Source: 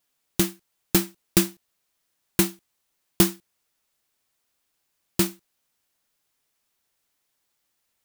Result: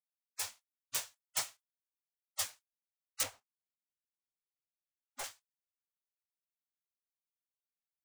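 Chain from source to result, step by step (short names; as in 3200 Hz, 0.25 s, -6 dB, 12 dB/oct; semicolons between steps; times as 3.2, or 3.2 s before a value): octaver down 2 oct, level +3 dB; three-band isolator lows -16 dB, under 300 Hz, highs -18 dB, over 6900 Hz; spectral gate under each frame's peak -25 dB weak; 3.23–5.24 tilt shelf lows +8.5 dB, about 1500 Hz; gain +1 dB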